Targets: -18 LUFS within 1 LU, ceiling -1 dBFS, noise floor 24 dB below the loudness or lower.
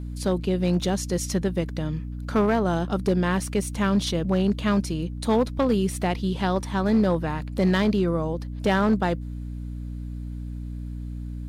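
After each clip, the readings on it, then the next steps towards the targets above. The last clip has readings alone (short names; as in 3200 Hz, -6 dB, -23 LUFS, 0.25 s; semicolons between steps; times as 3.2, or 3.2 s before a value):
clipped 0.8%; flat tops at -14.5 dBFS; hum 60 Hz; harmonics up to 300 Hz; hum level -31 dBFS; loudness -24.5 LUFS; peak -14.5 dBFS; loudness target -18.0 LUFS
-> clip repair -14.5 dBFS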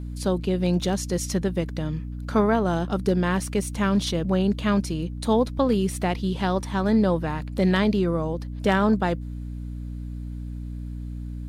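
clipped 0.0%; hum 60 Hz; harmonics up to 300 Hz; hum level -31 dBFS
-> notches 60/120/180/240/300 Hz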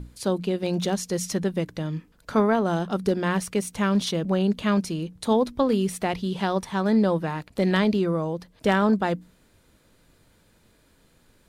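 hum none; loudness -25.0 LUFS; peak -9.0 dBFS; loudness target -18.0 LUFS
-> gain +7 dB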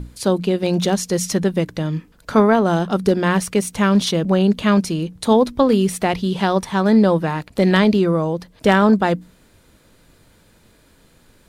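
loudness -18.0 LUFS; peak -2.0 dBFS; noise floor -54 dBFS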